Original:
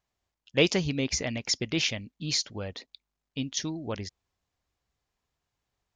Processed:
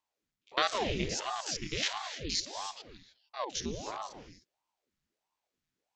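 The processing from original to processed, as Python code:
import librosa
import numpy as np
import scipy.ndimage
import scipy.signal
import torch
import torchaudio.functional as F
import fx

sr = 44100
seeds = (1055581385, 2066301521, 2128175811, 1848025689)

y = fx.spec_steps(x, sr, hold_ms=50)
y = fx.band_shelf(y, sr, hz=640.0, db=-8.5, octaves=1.7)
y = fx.spec_erase(y, sr, start_s=1.13, length_s=1.69, low_hz=320.0, high_hz=860.0)
y = fx.rev_gated(y, sr, seeds[0], gate_ms=330, shape='rising', drr_db=8.0)
y = fx.ring_lfo(y, sr, carrier_hz=530.0, swing_pct=85, hz=1.5)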